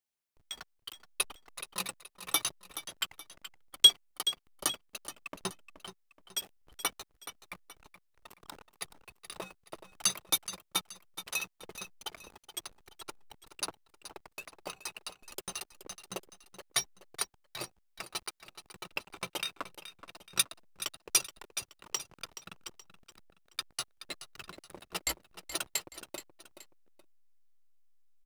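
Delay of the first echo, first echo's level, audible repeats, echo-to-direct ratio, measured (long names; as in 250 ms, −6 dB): 425 ms, −12.5 dB, 2, −12.0 dB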